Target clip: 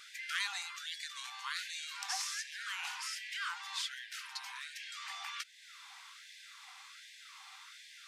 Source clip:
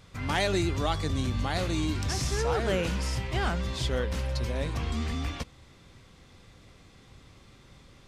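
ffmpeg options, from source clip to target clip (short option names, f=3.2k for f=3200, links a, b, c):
-af "acompressor=threshold=-46dB:ratio=2,afftfilt=real='re*gte(b*sr/1024,700*pow(1600/700,0.5+0.5*sin(2*PI*1.3*pts/sr)))':imag='im*gte(b*sr/1024,700*pow(1600/700,0.5+0.5*sin(2*PI*1.3*pts/sr)))':win_size=1024:overlap=0.75,volume=7.5dB"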